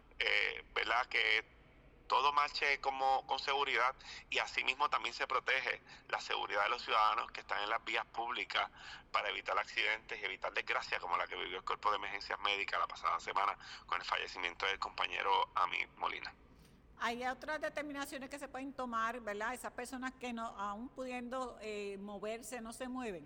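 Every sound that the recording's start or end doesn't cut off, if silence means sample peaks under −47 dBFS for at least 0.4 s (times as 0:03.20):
0:02.10–0:16.31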